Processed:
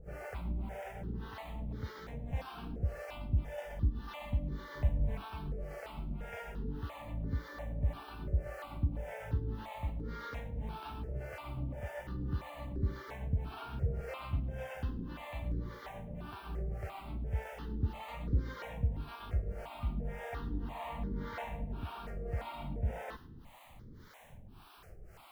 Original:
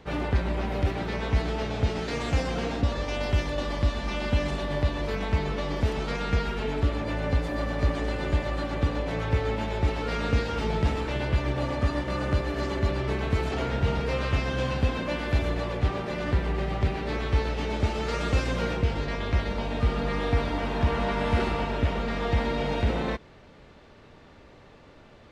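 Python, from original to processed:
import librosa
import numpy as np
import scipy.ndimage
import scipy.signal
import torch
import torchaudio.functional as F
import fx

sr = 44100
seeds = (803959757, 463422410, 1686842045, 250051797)

y = fx.dmg_noise_colour(x, sr, seeds[0], colour='pink', level_db=-41.0)
y = fx.high_shelf(y, sr, hz=2400.0, db=-11.0)
y = fx.harmonic_tremolo(y, sr, hz=1.8, depth_pct=100, crossover_hz=470.0)
y = fx.low_shelf(y, sr, hz=330.0, db=8.0, at=(4.75, 5.22))
y = fx.echo_thinned(y, sr, ms=106, feedback_pct=29, hz=840.0, wet_db=-18)
y = fx.phaser_held(y, sr, hz=2.9, low_hz=990.0, high_hz=2600.0)
y = y * librosa.db_to_amplitude(-5.0)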